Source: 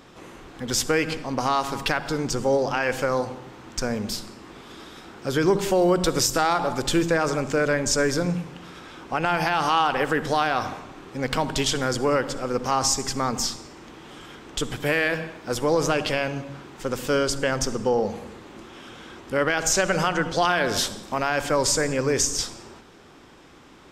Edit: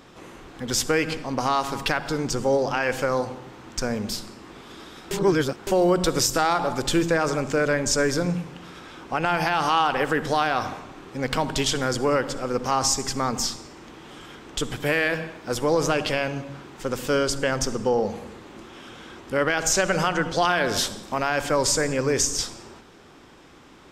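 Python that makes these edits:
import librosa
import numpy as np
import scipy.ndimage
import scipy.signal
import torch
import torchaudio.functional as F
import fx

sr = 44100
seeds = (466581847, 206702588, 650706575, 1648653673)

y = fx.edit(x, sr, fx.reverse_span(start_s=5.11, length_s=0.56), tone=tone)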